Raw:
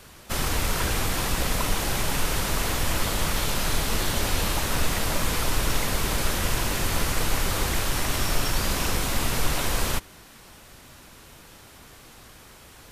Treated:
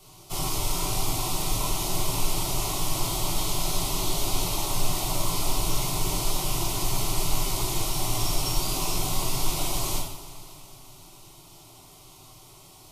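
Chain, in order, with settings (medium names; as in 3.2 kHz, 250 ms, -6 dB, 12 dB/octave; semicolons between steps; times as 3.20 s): static phaser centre 330 Hz, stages 8; reverberation, pre-delay 3 ms, DRR -4 dB; trim -5 dB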